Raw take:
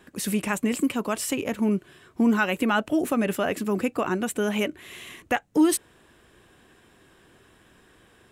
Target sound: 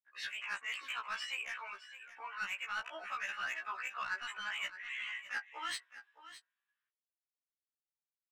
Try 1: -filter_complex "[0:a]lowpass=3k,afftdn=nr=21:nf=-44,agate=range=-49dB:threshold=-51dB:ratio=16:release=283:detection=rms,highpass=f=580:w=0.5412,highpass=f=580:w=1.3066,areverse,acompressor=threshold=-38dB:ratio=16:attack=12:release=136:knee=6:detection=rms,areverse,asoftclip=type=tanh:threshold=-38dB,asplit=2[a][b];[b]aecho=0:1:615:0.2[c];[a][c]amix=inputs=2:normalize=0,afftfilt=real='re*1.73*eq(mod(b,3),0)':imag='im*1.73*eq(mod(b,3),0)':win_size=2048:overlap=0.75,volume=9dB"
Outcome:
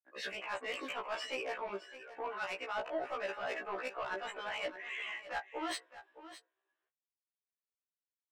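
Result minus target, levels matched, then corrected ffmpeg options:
500 Hz band +17.5 dB
-filter_complex "[0:a]lowpass=3k,afftdn=nr=21:nf=-44,agate=range=-49dB:threshold=-51dB:ratio=16:release=283:detection=rms,highpass=f=1.3k:w=0.5412,highpass=f=1.3k:w=1.3066,areverse,acompressor=threshold=-38dB:ratio=16:attack=12:release=136:knee=6:detection=rms,areverse,asoftclip=type=tanh:threshold=-38dB,asplit=2[a][b];[b]aecho=0:1:615:0.2[c];[a][c]amix=inputs=2:normalize=0,afftfilt=real='re*1.73*eq(mod(b,3),0)':imag='im*1.73*eq(mod(b,3),0)':win_size=2048:overlap=0.75,volume=9dB"

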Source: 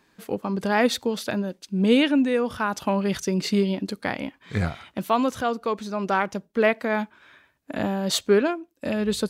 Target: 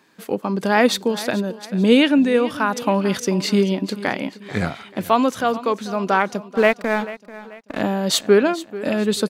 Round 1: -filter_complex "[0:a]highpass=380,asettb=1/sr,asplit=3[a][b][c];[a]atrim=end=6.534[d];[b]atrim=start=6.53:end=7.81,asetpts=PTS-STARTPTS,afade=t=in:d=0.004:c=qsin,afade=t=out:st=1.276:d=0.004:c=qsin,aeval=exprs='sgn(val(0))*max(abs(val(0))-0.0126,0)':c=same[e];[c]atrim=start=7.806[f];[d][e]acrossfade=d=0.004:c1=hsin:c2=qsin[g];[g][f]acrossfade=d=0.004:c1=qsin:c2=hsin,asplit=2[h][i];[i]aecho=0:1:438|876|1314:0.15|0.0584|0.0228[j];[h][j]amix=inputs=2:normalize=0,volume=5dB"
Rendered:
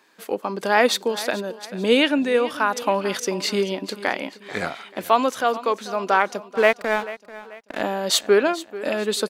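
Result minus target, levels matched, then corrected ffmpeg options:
125 Hz band -8.5 dB
-filter_complex "[0:a]highpass=150,asettb=1/sr,asplit=3[a][b][c];[a]atrim=end=6.534[d];[b]atrim=start=6.53:end=7.81,asetpts=PTS-STARTPTS,afade=t=in:d=0.004:c=qsin,afade=t=out:st=1.276:d=0.004:c=qsin,aeval=exprs='sgn(val(0))*max(abs(val(0))-0.0126,0)':c=same[e];[c]atrim=start=7.806[f];[d][e]acrossfade=d=0.004:c1=hsin:c2=qsin[g];[g][f]acrossfade=d=0.004:c1=qsin:c2=hsin,asplit=2[h][i];[i]aecho=0:1:438|876|1314:0.15|0.0584|0.0228[j];[h][j]amix=inputs=2:normalize=0,volume=5dB"

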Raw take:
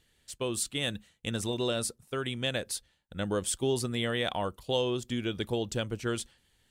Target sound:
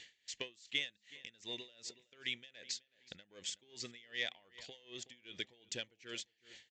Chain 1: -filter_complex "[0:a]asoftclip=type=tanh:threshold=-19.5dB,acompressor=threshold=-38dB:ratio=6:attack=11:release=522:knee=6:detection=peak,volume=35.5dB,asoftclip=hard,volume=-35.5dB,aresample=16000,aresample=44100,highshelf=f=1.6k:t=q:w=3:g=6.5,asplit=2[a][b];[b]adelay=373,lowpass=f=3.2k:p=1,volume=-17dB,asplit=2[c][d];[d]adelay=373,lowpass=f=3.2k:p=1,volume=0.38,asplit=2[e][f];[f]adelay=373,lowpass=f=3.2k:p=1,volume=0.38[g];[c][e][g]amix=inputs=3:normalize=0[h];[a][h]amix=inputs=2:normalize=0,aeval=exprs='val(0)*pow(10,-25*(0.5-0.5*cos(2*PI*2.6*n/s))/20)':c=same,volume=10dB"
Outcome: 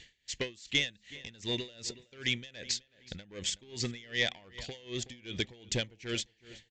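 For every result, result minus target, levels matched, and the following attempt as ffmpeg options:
compressor: peak gain reduction -8.5 dB; 500 Hz band +3.0 dB
-filter_complex "[0:a]asoftclip=type=tanh:threshold=-19.5dB,acompressor=threshold=-48.5dB:ratio=6:attack=11:release=522:knee=6:detection=peak,volume=35.5dB,asoftclip=hard,volume=-35.5dB,aresample=16000,aresample=44100,highshelf=f=1.6k:t=q:w=3:g=6.5,asplit=2[a][b];[b]adelay=373,lowpass=f=3.2k:p=1,volume=-17dB,asplit=2[c][d];[d]adelay=373,lowpass=f=3.2k:p=1,volume=0.38,asplit=2[e][f];[f]adelay=373,lowpass=f=3.2k:p=1,volume=0.38[g];[c][e][g]amix=inputs=3:normalize=0[h];[a][h]amix=inputs=2:normalize=0,aeval=exprs='val(0)*pow(10,-25*(0.5-0.5*cos(2*PI*2.6*n/s))/20)':c=same,volume=10dB"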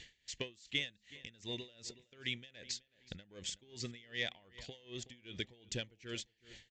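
500 Hz band +3.0 dB
-filter_complex "[0:a]asoftclip=type=tanh:threshold=-19.5dB,acompressor=threshold=-48.5dB:ratio=6:attack=11:release=522:knee=6:detection=peak,volume=35.5dB,asoftclip=hard,volume=-35.5dB,aresample=16000,aresample=44100,highpass=f=500:p=1,highshelf=f=1.6k:t=q:w=3:g=6.5,asplit=2[a][b];[b]adelay=373,lowpass=f=3.2k:p=1,volume=-17dB,asplit=2[c][d];[d]adelay=373,lowpass=f=3.2k:p=1,volume=0.38,asplit=2[e][f];[f]adelay=373,lowpass=f=3.2k:p=1,volume=0.38[g];[c][e][g]amix=inputs=3:normalize=0[h];[a][h]amix=inputs=2:normalize=0,aeval=exprs='val(0)*pow(10,-25*(0.5-0.5*cos(2*PI*2.6*n/s))/20)':c=same,volume=10dB"

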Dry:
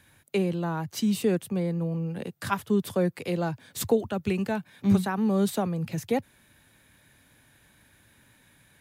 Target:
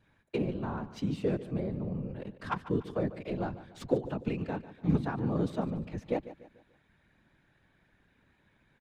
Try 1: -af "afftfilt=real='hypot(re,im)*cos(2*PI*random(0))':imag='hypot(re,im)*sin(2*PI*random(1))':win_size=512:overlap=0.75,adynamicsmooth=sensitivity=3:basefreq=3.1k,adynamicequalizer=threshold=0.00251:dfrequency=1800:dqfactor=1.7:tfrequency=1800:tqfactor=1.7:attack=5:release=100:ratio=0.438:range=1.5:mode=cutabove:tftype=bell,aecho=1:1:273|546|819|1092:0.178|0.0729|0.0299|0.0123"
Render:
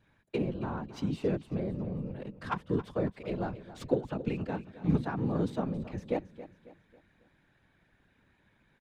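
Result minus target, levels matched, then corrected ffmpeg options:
echo 0.127 s late
-af "afftfilt=real='hypot(re,im)*cos(2*PI*random(0))':imag='hypot(re,im)*sin(2*PI*random(1))':win_size=512:overlap=0.75,adynamicsmooth=sensitivity=3:basefreq=3.1k,adynamicequalizer=threshold=0.00251:dfrequency=1800:dqfactor=1.7:tfrequency=1800:tqfactor=1.7:attack=5:release=100:ratio=0.438:range=1.5:mode=cutabove:tftype=bell,aecho=1:1:146|292|438|584:0.178|0.0729|0.0299|0.0123"

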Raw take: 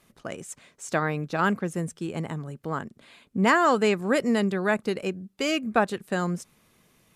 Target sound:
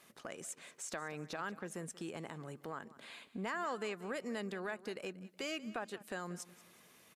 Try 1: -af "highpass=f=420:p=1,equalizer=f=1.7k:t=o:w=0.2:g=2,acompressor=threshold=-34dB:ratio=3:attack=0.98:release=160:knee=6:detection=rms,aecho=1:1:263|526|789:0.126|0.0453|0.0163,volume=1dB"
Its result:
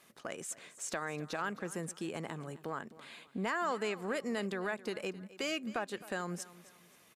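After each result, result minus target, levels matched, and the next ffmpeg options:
echo 79 ms late; compressor: peak gain reduction -4.5 dB
-af "highpass=f=420:p=1,equalizer=f=1.7k:t=o:w=0.2:g=2,acompressor=threshold=-34dB:ratio=3:attack=0.98:release=160:knee=6:detection=rms,aecho=1:1:184|368|552:0.126|0.0453|0.0163,volume=1dB"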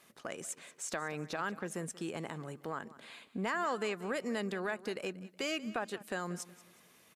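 compressor: peak gain reduction -4.5 dB
-af "highpass=f=420:p=1,equalizer=f=1.7k:t=o:w=0.2:g=2,acompressor=threshold=-41dB:ratio=3:attack=0.98:release=160:knee=6:detection=rms,aecho=1:1:184|368|552:0.126|0.0453|0.0163,volume=1dB"

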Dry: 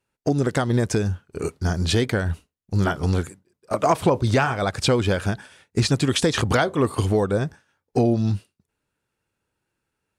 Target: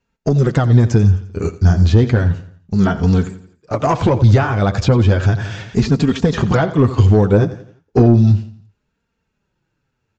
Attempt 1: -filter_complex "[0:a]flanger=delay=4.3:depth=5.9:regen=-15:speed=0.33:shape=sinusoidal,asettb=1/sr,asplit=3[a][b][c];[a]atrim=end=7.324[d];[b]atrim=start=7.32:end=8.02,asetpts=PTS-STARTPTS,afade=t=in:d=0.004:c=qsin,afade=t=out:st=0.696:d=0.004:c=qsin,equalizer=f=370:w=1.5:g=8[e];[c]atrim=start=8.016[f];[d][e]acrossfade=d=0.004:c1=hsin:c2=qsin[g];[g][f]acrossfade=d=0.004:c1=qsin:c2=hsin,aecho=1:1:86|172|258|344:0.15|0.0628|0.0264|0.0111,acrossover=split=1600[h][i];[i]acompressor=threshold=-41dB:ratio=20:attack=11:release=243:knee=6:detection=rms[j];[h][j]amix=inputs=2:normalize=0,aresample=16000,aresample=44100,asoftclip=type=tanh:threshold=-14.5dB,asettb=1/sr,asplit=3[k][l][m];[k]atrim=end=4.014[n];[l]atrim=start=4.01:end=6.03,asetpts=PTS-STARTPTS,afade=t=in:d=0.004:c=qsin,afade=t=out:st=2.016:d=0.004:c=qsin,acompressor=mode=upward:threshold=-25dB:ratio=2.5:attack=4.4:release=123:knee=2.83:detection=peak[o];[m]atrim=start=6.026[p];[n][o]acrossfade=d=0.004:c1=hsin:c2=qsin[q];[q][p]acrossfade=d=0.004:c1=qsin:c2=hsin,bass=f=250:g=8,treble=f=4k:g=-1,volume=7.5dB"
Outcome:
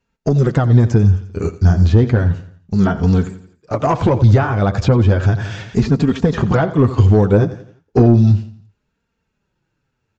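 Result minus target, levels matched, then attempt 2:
compressor: peak gain reduction +6 dB
-filter_complex "[0:a]flanger=delay=4.3:depth=5.9:regen=-15:speed=0.33:shape=sinusoidal,asettb=1/sr,asplit=3[a][b][c];[a]atrim=end=7.324[d];[b]atrim=start=7.32:end=8.02,asetpts=PTS-STARTPTS,afade=t=in:d=0.004:c=qsin,afade=t=out:st=0.696:d=0.004:c=qsin,equalizer=f=370:w=1.5:g=8[e];[c]atrim=start=8.016[f];[d][e]acrossfade=d=0.004:c1=hsin:c2=qsin[g];[g][f]acrossfade=d=0.004:c1=qsin:c2=hsin,aecho=1:1:86|172|258|344:0.15|0.0628|0.0264|0.0111,acrossover=split=1600[h][i];[i]acompressor=threshold=-34.5dB:ratio=20:attack=11:release=243:knee=6:detection=rms[j];[h][j]amix=inputs=2:normalize=0,aresample=16000,aresample=44100,asoftclip=type=tanh:threshold=-14.5dB,asettb=1/sr,asplit=3[k][l][m];[k]atrim=end=4.014[n];[l]atrim=start=4.01:end=6.03,asetpts=PTS-STARTPTS,afade=t=in:d=0.004:c=qsin,afade=t=out:st=2.016:d=0.004:c=qsin,acompressor=mode=upward:threshold=-25dB:ratio=2.5:attack=4.4:release=123:knee=2.83:detection=peak[o];[m]atrim=start=6.026[p];[n][o]acrossfade=d=0.004:c1=hsin:c2=qsin[q];[q][p]acrossfade=d=0.004:c1=qsin:c2=hsin,bass=f=250:g=8,treble=f=4k:g=-1,volume=7.5dB"

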